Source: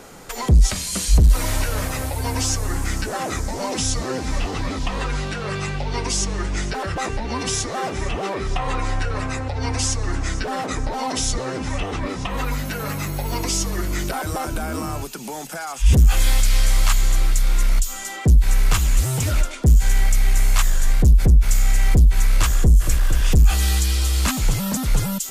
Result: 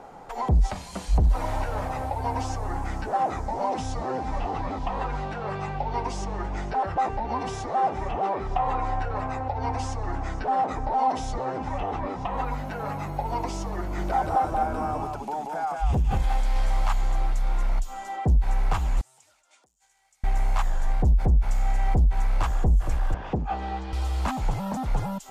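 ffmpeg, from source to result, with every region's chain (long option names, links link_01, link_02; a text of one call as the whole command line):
ffmpeg -i in.wav -filter_complex "[0:a]asettb=1/sr,asplit=3[link_01][link_02][link_03];[link_01]atrim=end=13.804[link_04];[link_02]atrim=start=13.8:end=16.56,asetpts=PTS-STARTPTS,afade=type=in:duration=0.004:curve=qsin,afade=type=out:start_time=2.756:duration=0.004:curve=qsin,aecho=1:1:180:0.668,atrim=end_sample=121716,acompressor=threshold=-12dB:ratio=4:attack=3.2:release=140:knee=1:detection=peak[link_05];[link_03]atrim=start=16.556[link_06];[link_04][link_05]acrossfade=duration=0.004:curve1=hsin:curve2=qsin[link_07];[link_07][link_06]acrossfade=duration=0.004:curve1=qsin:curve2=hsin,asettb=1/sr,asplit=3[link_08][link_09][link_10];[link_08]atrim=end=19.014[link_11];[link_09]atrim=start=19.01:end=20.24,asetpts=PTS-STARTPTS,afade=type=in:duration=0.004:curve=qsin,afade=type=out:start_time=1.226:duration=0.004:curve=qsin,acompressor=threshold=-26dB:ratio=8:attack=3.2:release=140:knee=1:detection=peak,bandpass=frequency=7900:width_type=q:width=1.3[link_12];[link_10]atrim=start=20.236[link_13];[link_11][link_12]acrossfade=duration=0.004:curve1=hsin:curve2=qsin[link_14];[link_14][link_13]acrossfade=duration=0.004:curve1=qsin:curve2=hsin,asettb=1/sr,asplit=3[link_15][link_16][link_17];[link_15]atrim=end=23.144[link_18];[link_16]atrim=start=23.14:end=23.93,asetpts=PTS-STARTPTS,afade=type=in:duration=0.004:curve=qsin,afade=type=out:start_time=0.786:duration=0.004:curve=qsin,highpass=280,lowpass=5900,aemphasis=mode=reproduction:type=riaa[link_19];[link_17]atrim=start=23.926[link_20];[link_18][link_19]acrossfade=duration=0.004:curve1=hsin:curve2=qsin[link_21];[link_21][link_20]acrossfade=duration=0.004:curve1=qsin:curve2=hsin,lowpass=frequency=1500:poles=1,equalizer=frequency=810:width=1.8:gain=14,volume=-7dB" out.wav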